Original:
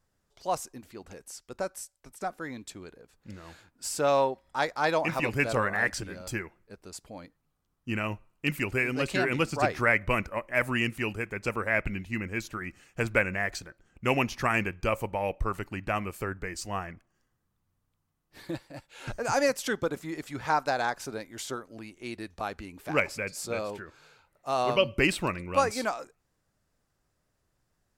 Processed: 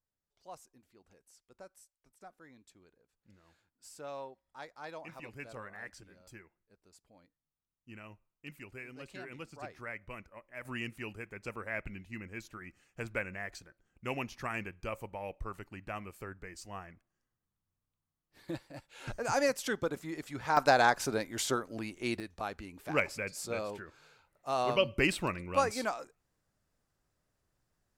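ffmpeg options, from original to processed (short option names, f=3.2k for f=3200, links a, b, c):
-af "asetnsamples=n=441:p=0,asendcmd='10.65 volume volume -11dB;18.48 volume volume -4dB;20.57 volume volume 4dB;22.2 volume volume -4dB',volume=-19dB"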